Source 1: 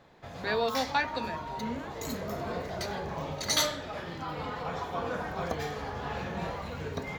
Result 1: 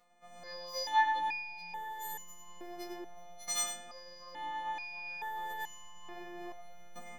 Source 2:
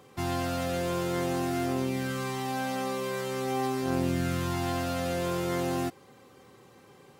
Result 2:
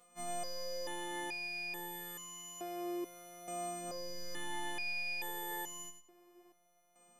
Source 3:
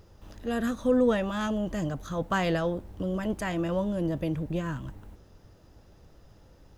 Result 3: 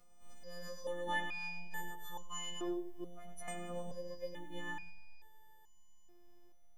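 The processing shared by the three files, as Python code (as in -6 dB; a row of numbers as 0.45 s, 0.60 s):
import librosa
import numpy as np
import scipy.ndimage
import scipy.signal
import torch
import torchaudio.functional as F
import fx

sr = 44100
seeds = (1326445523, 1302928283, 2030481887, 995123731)

y = fx.freq_snap(x, sr, grid_st=3)
y = y + 10.0 ** (-9.0 / 20.0) * np.pad(y, (int(100 * sr / 1000.0), 0))[:len(y)]
y = fx.robotise(y, sr, hz=175.0)
y = fx.resonator_held(y, sr, hz=2.3, low_hz=240.0, high_hz=1000.0)
y = y * librosa.db_to_amplitude(7.5)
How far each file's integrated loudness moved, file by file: -4.0 LU, -10.5 LU, -14.5 LU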